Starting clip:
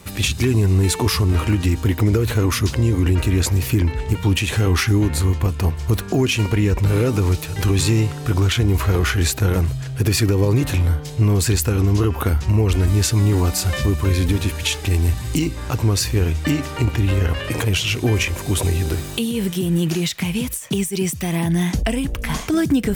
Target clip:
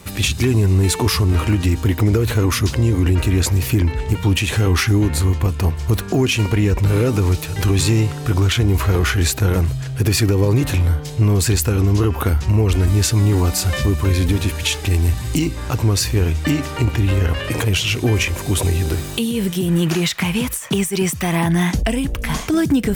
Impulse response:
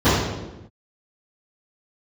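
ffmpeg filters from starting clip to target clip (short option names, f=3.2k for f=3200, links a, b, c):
-filter_complex "[0:a]asettb=1/sr,asplit=3[a][b][c];[a]atrim=end=19.684[d];[b]atrim=start=19.68:end=21.71,asetpts=PTS-STARTPTS,afade=t=in:d=0.004:c=qsin,afade=t=out:st=2.026:d=0.004:c=qsin,equalizer=f=1.2k:t=o:w=1.8:g=8.5[e];[c]atrim=start=21.706[f];[d][e]acrossfade=d=0.004:c1=hsin:c2=qsin[g];[g][f]acrossfade=d=0.004:c1=qsin:c2=hsin,asplit=2[h][i];[i]asoftclip=type=tanh:threshold=-18dB,volume=-11dB[j];[h][j]amix=inputs=2:normalize=0"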